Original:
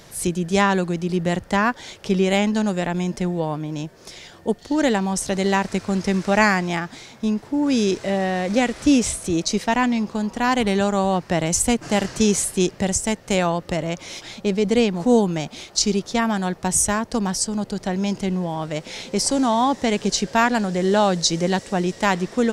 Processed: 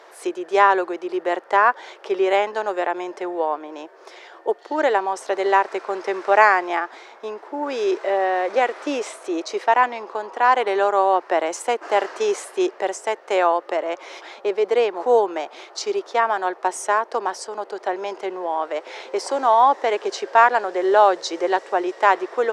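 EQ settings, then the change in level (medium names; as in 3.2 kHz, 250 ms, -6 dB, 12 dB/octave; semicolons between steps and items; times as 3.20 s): elliptic high-pass 360 Hz, stop band 80 dB; low-pass 1.7 kHz 6 dB/octave; peaking EQ 1.1 kHz +8 dB 2 oct; 0.0 dB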